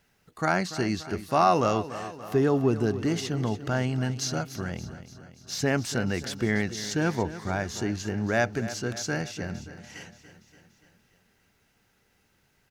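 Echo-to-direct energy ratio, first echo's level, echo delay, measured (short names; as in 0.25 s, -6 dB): -12.0 dB, -14.0 dB, 0.288 s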